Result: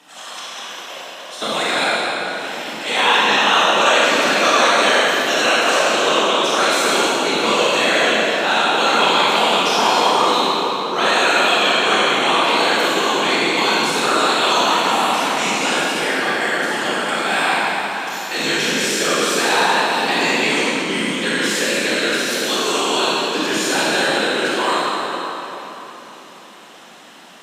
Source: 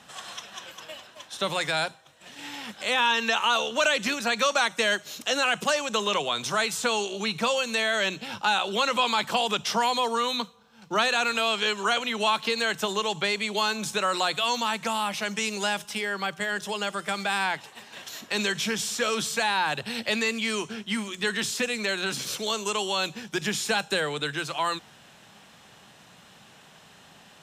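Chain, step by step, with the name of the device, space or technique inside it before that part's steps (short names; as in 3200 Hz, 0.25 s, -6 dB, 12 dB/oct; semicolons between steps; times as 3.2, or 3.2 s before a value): whispering ghost (whisperiser; HPF 210 Hz 24 dB/oct; reverb RT60 3.8 s, pre-delay 26 ms, DRR -8.5 dB); gain +1.5 dB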